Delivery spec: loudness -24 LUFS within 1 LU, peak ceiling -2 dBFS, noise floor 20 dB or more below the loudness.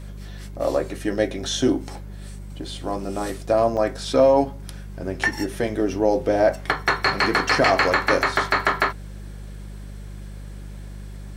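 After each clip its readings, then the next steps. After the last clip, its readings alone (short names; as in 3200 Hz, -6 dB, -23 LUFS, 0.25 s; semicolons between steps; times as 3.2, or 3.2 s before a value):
dropouts 2; longest dropout 2.3 ms; hum 50 Hz; harmonics up to 200 Hz; hum level -33 dBFS; loudness -21.5 LUFS; peak -5.0 dBFS; loudness target -24.0 LUFS
-> interpolate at 3.77/8.89, 2.3 ms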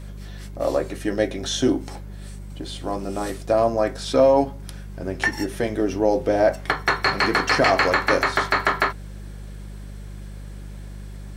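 dropouts 0; hum 50 Hz; harmonics up to 200 Hz; hum level -33 dBFS
-> de-hum 50 Hz, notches 4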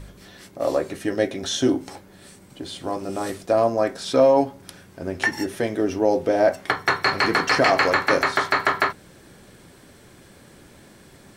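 hum none; loudness -21.5 LUFS; peak -5.5 dBFS; loudness target -24.0 LUFS
-> gain -2.5 dB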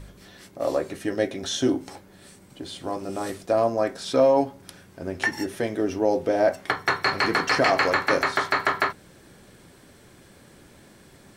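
loudness -24.0 LUFS; peak -8.0 dBFS; noise floor -52 dBFS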